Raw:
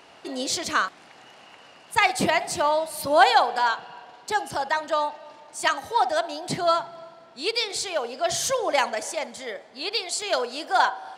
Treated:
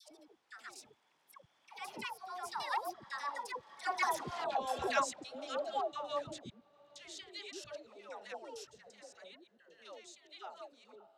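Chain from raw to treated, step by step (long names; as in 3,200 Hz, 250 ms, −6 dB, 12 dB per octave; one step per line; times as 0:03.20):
slices reordered back to front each 99 ms, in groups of 5
source passing by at 0:04.44, 53 m/s, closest 3.7 metres
compressor whose output falls as the input rises −37 dBFS, ratio −0.5
all-pass dispersion lows, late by 121 ms, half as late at 700 Hz
level +7 dB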